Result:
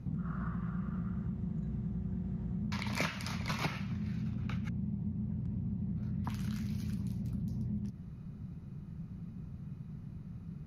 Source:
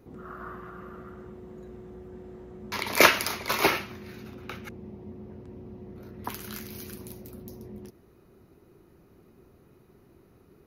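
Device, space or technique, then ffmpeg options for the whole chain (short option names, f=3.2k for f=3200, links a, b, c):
jukebox: -af "lowpass=7.7k,lowshelf=f=250:t=q:w=3:g=13.5,acompressor=threshold=-32dB:ratio=5,volume=-1.5dB"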